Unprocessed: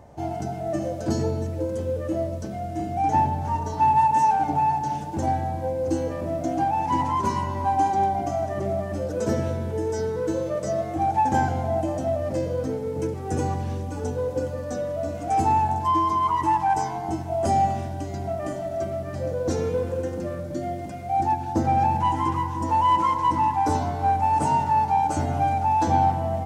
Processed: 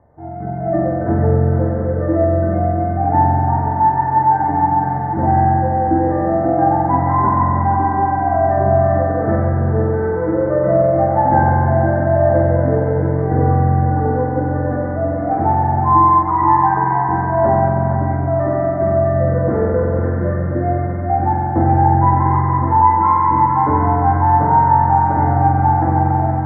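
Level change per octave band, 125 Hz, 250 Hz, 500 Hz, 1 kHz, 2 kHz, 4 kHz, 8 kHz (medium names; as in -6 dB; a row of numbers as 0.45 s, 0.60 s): +13.0 dB, +9.5 dB, +10.0 dB, +7.5 dB, +9.5 dB, under -40 dB, under -40 dB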